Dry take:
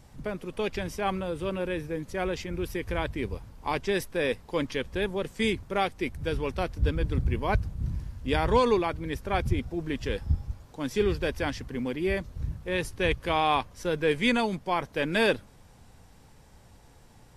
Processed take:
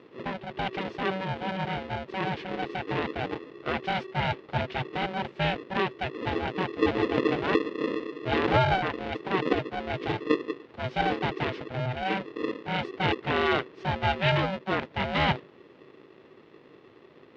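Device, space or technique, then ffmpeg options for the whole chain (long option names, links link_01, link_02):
ring modulator pedal into a guitar cabinet: -af "aeval=exprs='val(0)*sgn(sin(2*PI*380*n/s))':channel_layout=same,highpass=87,equalizer=frequency=140:width_type=q:width=4:gain=5,equalizer=frequency=370:width_type=q:width=4:gain=3,equalizer=frequency=1200:width_type=q:width=4:gain=-4,lowpass=frequency=3500:width=0.5412,lowpass=frequency=3500:width=1.3066"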